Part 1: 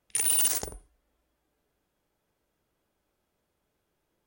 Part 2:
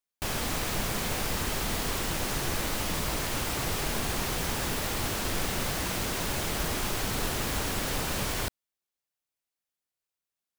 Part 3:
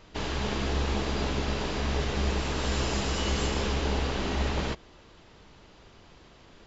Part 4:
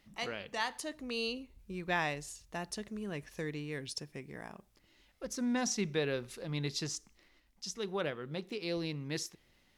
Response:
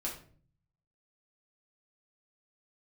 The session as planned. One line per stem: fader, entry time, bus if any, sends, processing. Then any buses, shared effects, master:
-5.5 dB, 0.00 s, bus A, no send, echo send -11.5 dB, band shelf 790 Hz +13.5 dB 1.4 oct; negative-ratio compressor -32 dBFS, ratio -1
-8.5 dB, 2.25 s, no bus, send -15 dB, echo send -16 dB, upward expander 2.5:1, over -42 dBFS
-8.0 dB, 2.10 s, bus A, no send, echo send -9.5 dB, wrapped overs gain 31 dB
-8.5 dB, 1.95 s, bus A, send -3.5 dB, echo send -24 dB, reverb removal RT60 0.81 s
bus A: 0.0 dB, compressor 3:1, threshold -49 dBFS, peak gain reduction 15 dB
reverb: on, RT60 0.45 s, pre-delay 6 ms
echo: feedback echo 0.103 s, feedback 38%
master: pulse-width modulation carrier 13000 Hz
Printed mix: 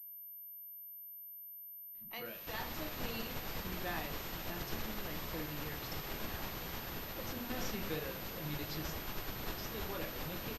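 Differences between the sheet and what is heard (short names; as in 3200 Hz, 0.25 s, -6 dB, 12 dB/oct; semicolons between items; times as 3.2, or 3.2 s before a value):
stem 1: muted; stem 3 -8.0 dB -> -18.0 dB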